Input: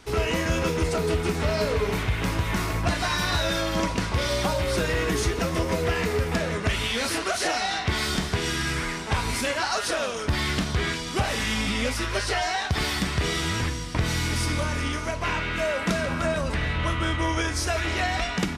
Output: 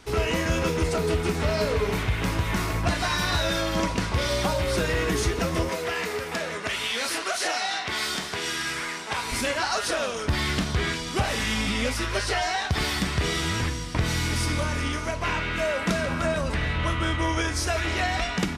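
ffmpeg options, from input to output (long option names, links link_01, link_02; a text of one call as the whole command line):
ffmpeg -i in.wav -filter_complex "[0:a]asettb=1/sr,asplit=3[link_01][link_02][link_03];[link_01]atrim=end=5.694[link_04];[link_02]atrim=start=5.69:end=9.32,asetpts=PTS-STARTPTS,afade=type=in:duration=0.004:curve=qsin,afade=type=out:start_time=3.626:duration=0.004:curve=qsin,highpass=frequency=570:poles=1[link_05];[link_03]atrim=start=9.316[link_06];[link_04][link_05]acrossfade=duration=0.004:curve1=hsin:curve2=qsin[link_07];[link_07][link_06]acrossfade=duration=0.004:curve1=qsin:curve2=hsin" out.wav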